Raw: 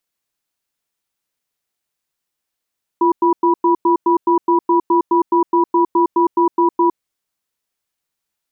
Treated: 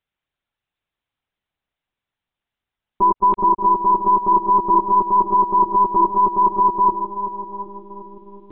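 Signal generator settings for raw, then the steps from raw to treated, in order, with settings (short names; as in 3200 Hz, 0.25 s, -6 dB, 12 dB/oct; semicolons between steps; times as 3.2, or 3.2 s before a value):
cadence 344 Hz, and 979 Hz, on 0.11 s, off 0.10 s, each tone -13 dBFS 3.98 s
on a send: darkening echo 0.371 s, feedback 75%, low-pass 830 Hz, level -7.5 dB; on the sum: monotone LPC vocoder at 8 kHz 200 Hz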